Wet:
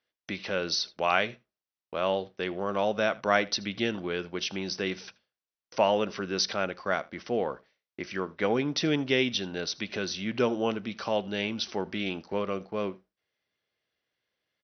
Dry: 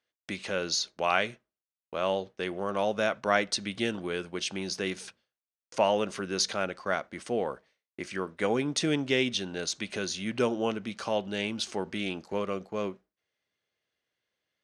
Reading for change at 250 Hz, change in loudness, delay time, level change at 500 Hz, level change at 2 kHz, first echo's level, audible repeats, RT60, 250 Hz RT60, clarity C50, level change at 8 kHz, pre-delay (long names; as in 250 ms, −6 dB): +1.0 dB, +1.0 dB, 80 ms, +1.0 dB, +1.0 dB, −23.0 dB, 1, no reverb audible, no reverb audible, no reverb audible, −3.5 dB, no reverb audible